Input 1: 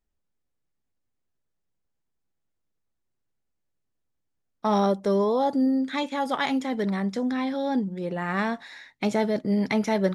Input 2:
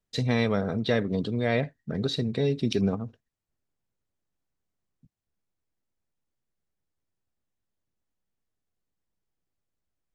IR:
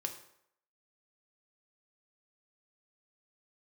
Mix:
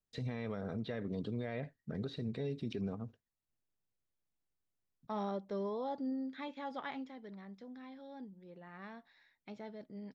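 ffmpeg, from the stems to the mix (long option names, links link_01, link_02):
-filter_complex "[0:a]lowpass=frequency=5100:width=0.5412,lowpass=frequency=5100:width=1.3066,adelay=450,volume=-3.5dB,afade=type=out:start_time=6.87:duration=0.32:silence=0.398107[link_01];[1:a]volume=-8.5dB,asplit=2[link_02][link_03];[link_03]apad=whole_len=467295[link_04];[link_01][link_04]sidechaingate=range=-12dB:threshold=-48dB:ratio=16:detection=peak[link_05];[link_05][link_02]amix=inputs=2:normalize=0,acrossover=split=2900[link_06][link_07];[link_07]acompressor=threshold=-57dB:ratio=4:attack=1:release=60[link_08];[link_06][link_08]amix=inputs=2:normalize=0,alimiter=level_in=5.5dB:limit=-24dB:level=0:latency=1:release=93,volume=-5.5dB"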